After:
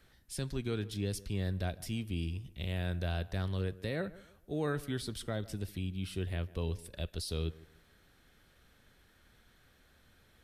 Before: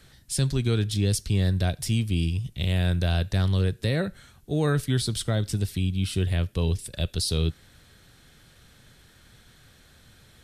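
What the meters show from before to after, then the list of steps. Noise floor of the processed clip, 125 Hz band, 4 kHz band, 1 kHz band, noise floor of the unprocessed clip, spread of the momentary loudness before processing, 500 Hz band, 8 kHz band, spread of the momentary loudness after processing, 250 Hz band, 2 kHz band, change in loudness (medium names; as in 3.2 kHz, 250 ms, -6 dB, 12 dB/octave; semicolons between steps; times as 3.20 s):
-66 dBFS, -12.5 dB, -12.5 dB, -8.0 dB, -56 dBFS, 4 LU, -8.0 dB, -14.0 dB, 6 LU, -10.0 dB, -8.5 dB, -11.5 dB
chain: ten-band graphic EQ 125 Hz -8 dB, 4 kHz -4 dB, 8 kHz -7 dB; tape echo 148 ms, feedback 34%, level -17 dB, low-pass 1.5 kHz; trim -7.5 dB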